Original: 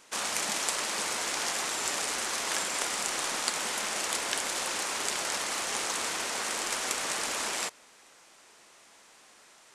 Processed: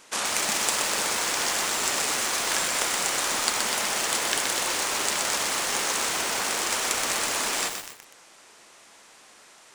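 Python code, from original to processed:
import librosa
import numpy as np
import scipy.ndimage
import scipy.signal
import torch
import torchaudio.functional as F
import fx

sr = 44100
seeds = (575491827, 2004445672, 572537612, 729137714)

p1 = x + fx.echo_single(x, sr, ms=261, db=-19.5, dry=0)
p2 = fx.echo_crushed(p1, sr, ms=124, feedback_pct=80, bits=6, wet_db=-4.0)
y = p2 * librosa.db_to_amplitude(4.5)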